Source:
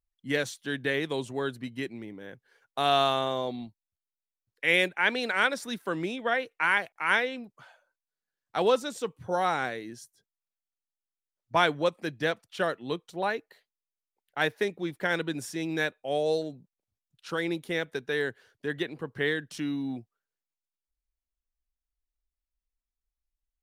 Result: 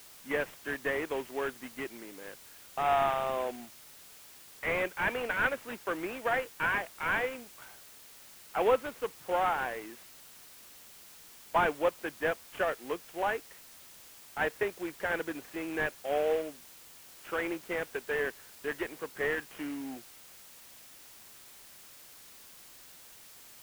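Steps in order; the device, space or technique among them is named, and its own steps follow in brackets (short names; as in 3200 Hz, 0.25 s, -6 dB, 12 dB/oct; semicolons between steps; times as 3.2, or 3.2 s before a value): army field radio (BPF 380–3300 Hz; CVSD 16 kbps; white noise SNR 18 dB)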